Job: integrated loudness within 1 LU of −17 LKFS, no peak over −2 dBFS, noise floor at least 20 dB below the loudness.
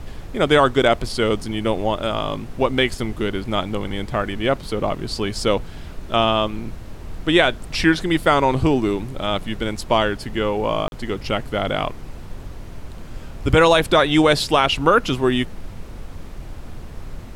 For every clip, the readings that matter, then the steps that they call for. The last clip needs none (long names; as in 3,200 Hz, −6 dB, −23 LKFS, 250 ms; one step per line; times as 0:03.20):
number of dropouts 1; longest dropout 41 ms; background noise floor −35 dBFS; target noise floor −40 dBFS; integrated loudness −20.0 LKFS; sample peak −3.0 dBFS; target loudness −17.0 LKFS
→ repair the gap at 0:10.88, 41 ms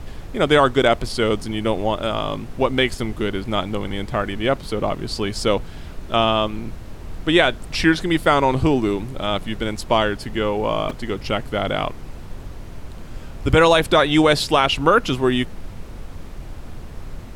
number of dropouts 0; background noise floor −35 dBFS; target noise floor −40 dBFS
→ noise reduction from a noise print 6 dB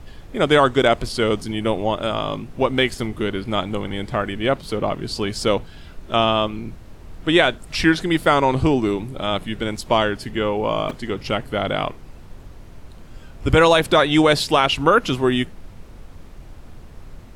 background noise floor −41 dBFS; integrated loudness −20.0 LKFS; sample peak −3.5 dBFS; target loudness −17.0 LKFS
→ level +3 dB
brickwall limiter −2 dBFS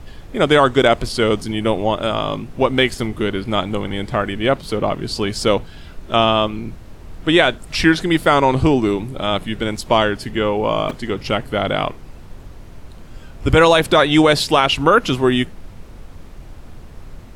integrated loudness −17.5 LKFS; sample peak −2.0 dBFS; background noise floor −38 dBFS